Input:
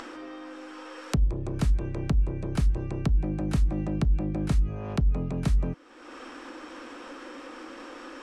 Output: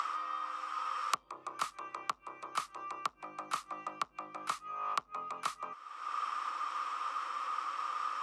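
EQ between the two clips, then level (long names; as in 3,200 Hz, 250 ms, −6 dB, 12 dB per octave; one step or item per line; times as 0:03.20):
high-pass with resonance 1,200 Hz, resonance Q 8.1
parametric band 1,600 Hz −10 dB 0.38 octaves
−1.0 dB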